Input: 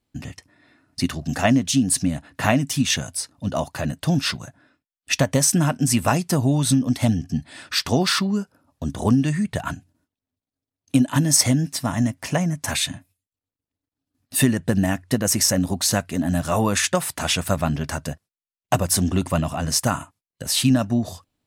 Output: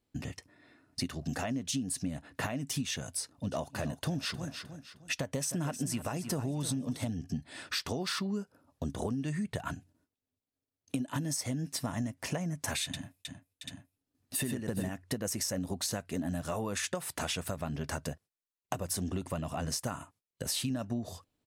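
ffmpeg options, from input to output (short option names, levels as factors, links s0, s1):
-filter_complex "[0:a]asplit=3[s0][s1][s2];[s0]afade=t=out:st=3.51:d=0.02[s3];[s1]aecho=1:1:309|618|927:0.188|0.0659|0.0231,afade=t=in:st=3.51:d=0.02,afade=t=out:st=7.09:d=0.02[s4];[s2]afade=t=in:st=7.09:d=0.02[s5];[s3][s4][s5]amix=inputs=3:normalize=0,asettb=1/sr,asplit=3[s6][s7][s8];[s6]atrim=end=12.844[s9];[s7]atrim=start=12.84:end=14.9,asetpts=PTS-STARTPTS,afade=t=in:d=0.004:c=qsin,afade=t=out:st=2.056:d=0.004:c=qsin,aecho=1:1:95|409|771|834:0.668|0.335|0.178|0.299,atrim=end_sample=90846[s10];[s8]atrim=start=14.896[s11];[s9][s10]acrossfade=d=0.004:c1=hsin:c2=qsin[s12];[s12][s11]acrossfade=d=0.004:c1=qsin:c2=hsin,equalizer=f=440:t=o:w=0.67:g=5,alimiter=limit=0.316:level=0:latency=1:release=287,acompressor=threshold=0.0447:ratio=4,volume=0.562"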